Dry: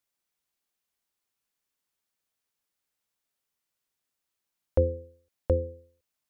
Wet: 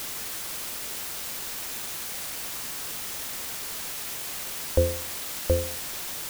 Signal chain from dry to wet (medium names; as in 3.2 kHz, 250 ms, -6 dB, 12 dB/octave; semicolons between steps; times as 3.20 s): word length cut 6-bit, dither triangular; trim +1.5 dB